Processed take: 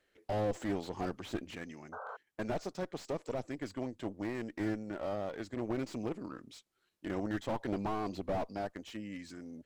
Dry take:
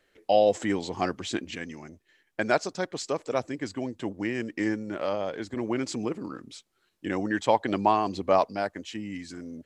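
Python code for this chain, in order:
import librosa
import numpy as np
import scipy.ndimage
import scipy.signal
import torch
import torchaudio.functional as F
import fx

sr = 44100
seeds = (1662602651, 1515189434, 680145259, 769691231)

y = fx.cheby_harmonics(x, sr, harmonics=(6,), levels_db=(-16,), full_scale_db=-7.5)
y = fx.spec_paint(y, sr, seeds[0], shape='noise', start_s=1.92, length_s=0.25, low_hz=410.0, high_hz=1600.0, level_db=-37.0)
y = fx.slew_limit(y, sr, full_power_hz=38.0)
y = y * 10.0 ** (-7.0 / 20.0)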